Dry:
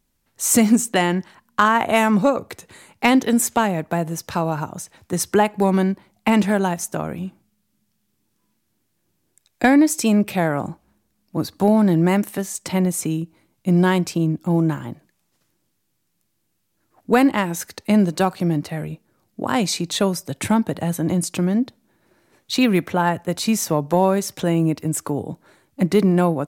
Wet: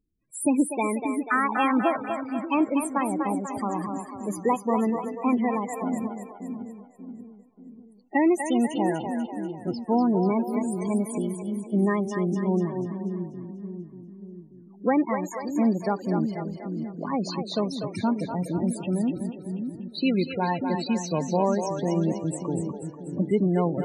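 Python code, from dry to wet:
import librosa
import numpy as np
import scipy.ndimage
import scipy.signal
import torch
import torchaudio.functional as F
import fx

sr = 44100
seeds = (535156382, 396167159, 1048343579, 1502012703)

y = fx.speed_glide(x, sr, from_pct=122, to_pct=100)
y = fx.spec_topn(y, sr, count=16)
y = fx.echo_split(y, sr, split_hz=370.0, low_ms=586, high_ms=244, feedback_pct=52, wet_db=-6.0)
y = F.gain(torch.from_numpy(y), -6.5).numpy()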